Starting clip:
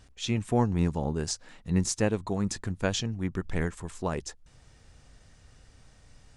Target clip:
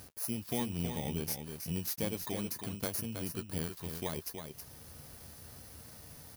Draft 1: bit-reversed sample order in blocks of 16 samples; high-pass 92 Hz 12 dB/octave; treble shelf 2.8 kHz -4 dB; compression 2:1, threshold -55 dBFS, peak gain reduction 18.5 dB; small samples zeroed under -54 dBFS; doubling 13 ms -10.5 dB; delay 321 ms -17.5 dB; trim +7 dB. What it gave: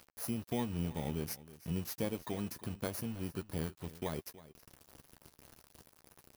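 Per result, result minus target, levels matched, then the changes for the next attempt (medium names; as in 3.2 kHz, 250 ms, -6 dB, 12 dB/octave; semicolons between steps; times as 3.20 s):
echo-to-direct -10.5 dB; small samples zeroed: distortion +10 dB; 4 kHz band -3.0 dB
change: delay 321 ms -7 dB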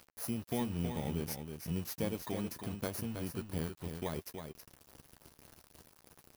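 small samples zeroed: distortion +10 dB; 4 kHz band -2.5 dB
change: small samples zeroed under -62 dBFS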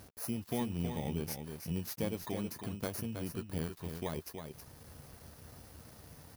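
4 kHz band -2.5 dB
change: treble shelf 2.8 kHz +4.5 dB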